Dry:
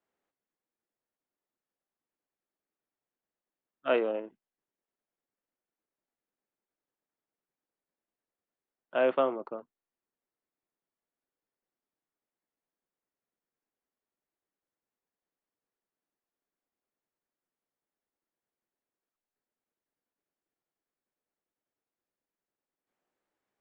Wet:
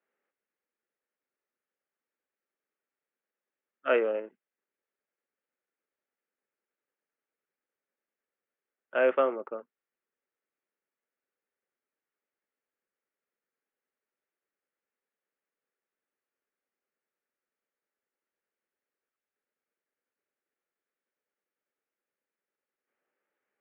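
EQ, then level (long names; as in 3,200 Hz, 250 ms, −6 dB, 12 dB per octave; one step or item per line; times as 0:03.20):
high-frequency loss of the air 240 metres
loudspeaker in its box 260–2,700 Hz, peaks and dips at 310 Hz −6 dB, 710 Hz −9 dB, 1,000 Hz −9 dB
low-shelf EQ 350 Hz −7.5 dB
+8.0 dB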